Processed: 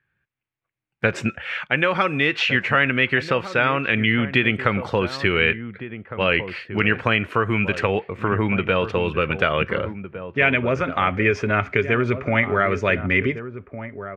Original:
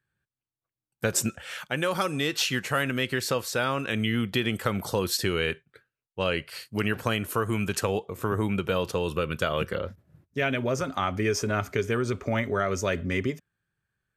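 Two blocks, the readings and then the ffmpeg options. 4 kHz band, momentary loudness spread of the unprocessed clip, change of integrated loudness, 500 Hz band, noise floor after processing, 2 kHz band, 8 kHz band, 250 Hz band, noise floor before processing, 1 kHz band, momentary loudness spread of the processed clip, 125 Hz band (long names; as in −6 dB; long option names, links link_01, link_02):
+3.5 dB, 6 LU, +7.0 dB, +5.5 dB, −80 dBFS, +11.0 dB, below −10 dB, +5.5 dB, below −85 dBFS, +7.5 dB, 9 LU, +5.5 dB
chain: -filter_complex "[0:a]lowpass=frequency=2300:width_type=q:width=2.5,asplit=2[link_01][link_02];[link_02]adelay=1458,volume=-11dB,highshelf=frequency=4000:gain=-32.8[link_03];[link_01][link_03]amix=inputs=2:normalize=0,volume=5dB"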